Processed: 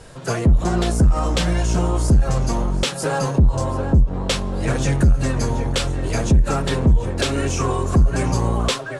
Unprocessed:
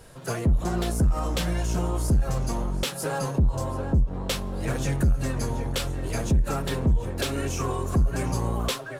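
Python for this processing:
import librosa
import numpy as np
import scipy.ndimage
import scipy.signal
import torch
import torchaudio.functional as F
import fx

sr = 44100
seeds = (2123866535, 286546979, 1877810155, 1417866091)

y = scipy.signal.sosfilt(scipy.signal.butter(4, 9400.0, 'lowpass', fs=sr, output='sos'), x)
y = y * librosa.db_to_amplitude(7.0)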